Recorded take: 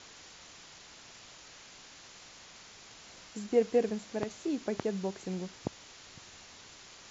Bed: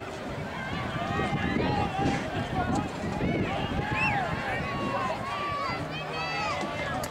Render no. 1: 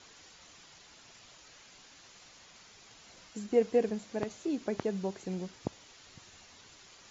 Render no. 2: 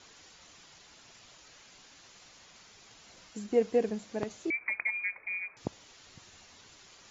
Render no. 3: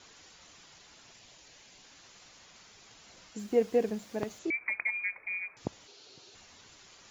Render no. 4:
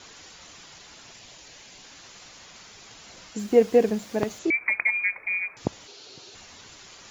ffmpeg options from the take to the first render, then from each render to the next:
-af "afftdn=nr=6:nf=-53"
-filter_complex "[0:a]asettb=1/sr,asplit=3[s0][s1][s2];[s0]atrim=end=4.504[s3];[s1]atrim=start=4.5:end=5.57,asetpts=PTS-STARTPTS,afade=t=in:d=0.004:c=qsin,afade=t=out:st=1.066:d=0.004:c=qsin,lowpass=f=2200:t=q:w=0.5098,lowpass=f=2200:t=q:w=0.6013,lowpass=f=2200:t=q:w=0.9,lowpass=f=2200:t=q:w=2.563,afreqshift=-2600[s4];[s2]atrim=start=5.566[s5];[s3][s4]acrossfade=d=0.004:c1=hsin:c2=qsin[s6];[s6][s5]acrossfade=d=0.004:c1=qsin:c2=hsin"
-filter_complex "[0:a]asettb=1/sr,asplit=3[s0][s1][s2];[s0]atrim=end=1.134[s3];[s1]atrim=start=1.13:end=1.85,asetpts=PTS-STARTPTS,afade=t=in:d=0.004:c=qsin,afade=t=out:st=0.716:d=0.004:c=qsin,equalizer=f=1300:w=3.2:g=-7[s4];[s2]atrim=start=1.846[s5];[s3][s4]acrossfade=d=0.004:c1=hsin:c2=qsin[s6];[s6][s5]acrossfade=d=0.004:c1=qsin:c2=hsin,asettb=1/sr,asplit=3[s7][s8][s9];[s7]atrim=end=3.394[s10];[s8]atrim=start=3.39:end=4.39,asetpts=PTS-STARTPTS,afade=t=in:d=0.004:c=qsin,afade=t=out:st=0.996:d=0.004:c=qsin,acrusher=bits=8:mix=0:aa=0.5[s11];[s9]atrim=start=4.386[s12];[s10][s11]acrossfade=d=0.004:c1=hsin:c2=qsin[s13];[s13][s12]acrossfade=d=0.004:c1=qsin:c2=hsin,asettb=1/sr,asplit=3[s14][s15][s16];[s14]atrim=end=5.874[s17];[s15]atrim=start=5.87:end=6.35,asetpts=PTS-STARTPTS,afade=t=in:d=0.004:c=qsin,afade=t=out:st=0.476:d=0.004:c=qsin,highpass=180,equalizer=f=200:t=q:w=4:g=-8,equalizer=f=410:t=q:w=4:g=10,equalizer=f=1100:t=q:w=4:g=-6,equalizer=f=1900:t=q:w=4:g=-10,equalizer=f=4300:t=q:w=4:g=6,lowpass=f=6700:w=0.5412,lowpass=f=6700:w=1.3066[s18];[s16]atrim=start=6.346[s19];[s17][s18]acrossfade=d=0.004:c1=hsin:c2=qsin[s20];[s20][s19]acrossfade=d=0.004:c1=qsin:c2=hsin"
-af "volume=2.66"

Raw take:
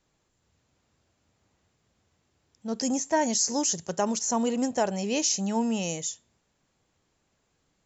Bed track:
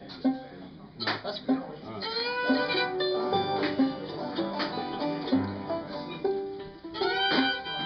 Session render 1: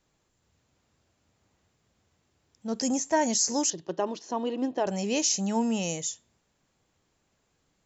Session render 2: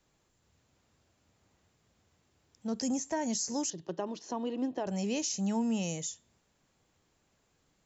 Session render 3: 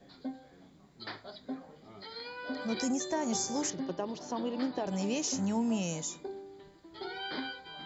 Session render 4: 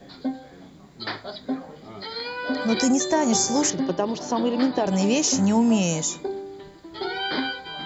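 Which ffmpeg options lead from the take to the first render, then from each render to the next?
-filter_complex "[0:a]asettb=1/sr,asplit=3[s0][s1][s2];[s0]atrim=end=3.704[s3];[s1]atrim=start=3.7:end=4.87,asetpts=PTS-STARTPTS,afade=t=in:d=0.004:c=qsin,afade=t=out:st=1.166:d=0.004:c=qsin,highpass=180,equalizer=f=220:t=q:w=4:g=-9,equalizer=f=320:t=q:w=4:g=10,equalizer=f=510:t=q:w=4:g=-3,equalizer=f=770:t=q:w=4:g=-4,equalizer=f=1400:t=q:w=4:g=-7,equalizer=f=2200:t=q:w=4:g=-9,lowpass=f=3800:w=0.5412,lowpass=f=3800:w=1.3066[s4];[s2]atrim=start=4.866[s5];[s3][s4]acrossfade=d=0.004:c1=hsin:c2=qsin[s6];[s6][s5]acrossfade=d=0.004:c1=qsin:c2=hsin"
-filter_complex "[0:a]acrossover=split=220[s0][s1];[s1]acompressor=threshold=0.0112:ratio=2[s2];[s0][s2]amix=inputs=2:normalize=0"
-filter_complex "[1:a]volume=0.224[s0];[0:a][s0]amix=inputs=2:normalize=0"
-af "volume=3.76"

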